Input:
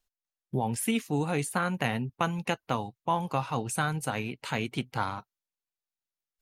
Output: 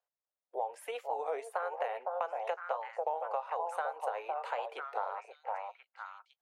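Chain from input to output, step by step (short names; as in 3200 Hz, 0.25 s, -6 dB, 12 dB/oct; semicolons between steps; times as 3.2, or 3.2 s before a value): steep high-pass 510 Hz 48 dB/oct; tilt shelf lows +9.5 dB, about 1300 Hz; on a send: delay with a stepping band-pass 0.508 s, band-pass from 670 Hz, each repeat 1.4 oct, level -3.5 dB; on the sum: compressor 6:1, threshold -30 dBFS, peak gain reduction 11 dB; high shelf 2600 Hz -11.5 dB; record warp 33 1/3 rpm, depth 160 cents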